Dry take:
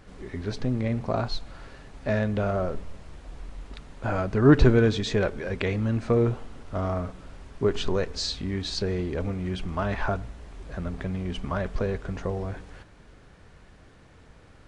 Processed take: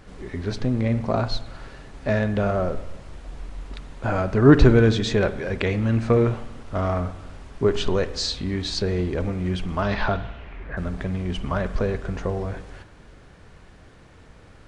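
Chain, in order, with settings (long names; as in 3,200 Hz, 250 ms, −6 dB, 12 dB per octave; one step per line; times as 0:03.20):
0:05.79–0:07.00: dynamic equaliser 2,100 Hz, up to +4 dB, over −43 dBFS, Q 0.91
0:09.82–0:10.76: low-pass with resonance 5,400 Hz → 1,800 Hz, resonance Q 3
spring reverb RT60 1 s, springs 44 ms, chirp 70 ms, DRR 13 dB
level +3.5 dB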